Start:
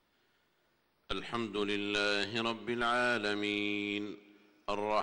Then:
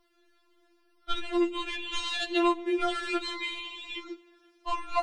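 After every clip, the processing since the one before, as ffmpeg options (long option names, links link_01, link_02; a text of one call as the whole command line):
ffmpeg -i in.wav -af "afftfilt=real='re*4*eq(mod(b,16),0)':imag='im*4*eq(mod(b,16),0)':win_size=2048:overlap=0.75,volume=6.5dB" out.wav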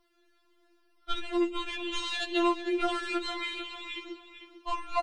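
ffmpeg -i in.wav -filter_complex "[0:a]asplit=2[link_01][link_02];[link_02]adelay=449,lowpass=frequency=4600:poles=1,volume=-10dB,asplit=2[link_03][link_04];[link_04]adelay=449,lowpass=frequency=4600:poles=1,volume=0.28,asplit=2[link_05][link_06];[link_06]adelay=449,lowpass=frequency=4600:poles=1,volume=0.28[link_07];[link_01][link_03][link_05][link_07]amix=inputs=4:normalize=0,volume=-1.5dB" out.wav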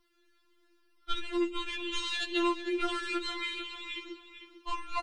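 ffmpeg -i in.wav -af "equalizer=frequency=620:width_type=o:width=0.74:gain=-13.5" out.wav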